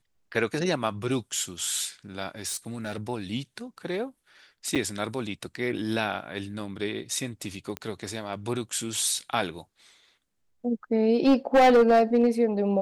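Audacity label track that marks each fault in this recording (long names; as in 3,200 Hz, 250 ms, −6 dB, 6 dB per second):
2.470000	3.080000	clipping −28 dBFS
4.750000	4.760000	drop-out 7 ms
7.770000	7.770000	click −17 dBFS
11.260000	12.270000	clipping −14 dBFS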